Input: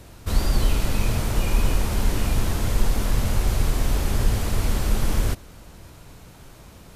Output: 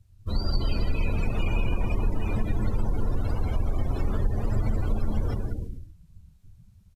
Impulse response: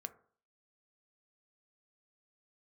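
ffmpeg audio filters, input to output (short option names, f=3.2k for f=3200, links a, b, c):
-af "flanger=delay=9:depth=3.4:regen=-33:speed=0.43:shape=triangular,aecho=1:1:190|332.5|439.4|519.5|579.6:0.631|0.398|0.251|0.158|0.1,acompressor=threshold=-20dB:ratio=2.5,afftdn=nr=32:nf=-34,highshelf=f=2.2k:g=11.5"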